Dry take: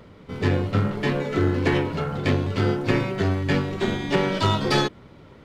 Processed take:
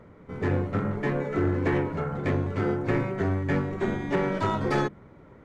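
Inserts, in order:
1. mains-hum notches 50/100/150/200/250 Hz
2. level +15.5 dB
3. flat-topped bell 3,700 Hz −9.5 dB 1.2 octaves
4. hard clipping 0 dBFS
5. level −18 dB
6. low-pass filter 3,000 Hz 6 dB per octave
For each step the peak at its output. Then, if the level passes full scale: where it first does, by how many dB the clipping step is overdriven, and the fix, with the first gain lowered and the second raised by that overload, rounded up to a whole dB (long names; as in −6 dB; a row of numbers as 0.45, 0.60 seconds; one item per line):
−8.0, +7.5, +7.5, 0.0, −18.0, −18.0 dBFS
step 2, 7.5 dB
step 2 +7.5 dB, step 5 −10 dB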